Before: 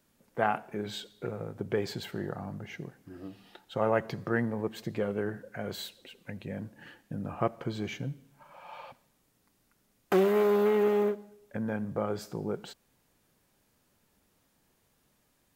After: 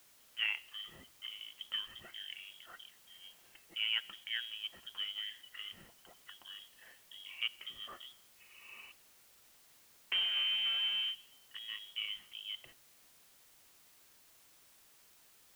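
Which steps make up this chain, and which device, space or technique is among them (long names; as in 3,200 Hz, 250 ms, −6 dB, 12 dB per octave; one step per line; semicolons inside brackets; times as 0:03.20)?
scrambled radio voice (band-pass filter 370–2,900 Hz; voice inversion scrambler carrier 3,500 Hz; white noise bed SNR 21 dB)
level −7 dB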